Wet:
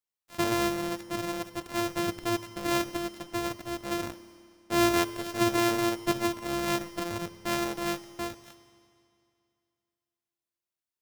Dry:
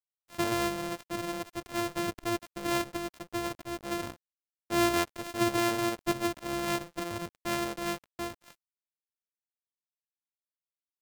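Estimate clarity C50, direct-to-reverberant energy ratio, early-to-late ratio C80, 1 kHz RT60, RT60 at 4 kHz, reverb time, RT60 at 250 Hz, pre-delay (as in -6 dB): 12.0 dB, 11.0 dB, 13.0 dB, 2.5 s, 2.4 s, 2.5 s, 2.5 s, 10 ms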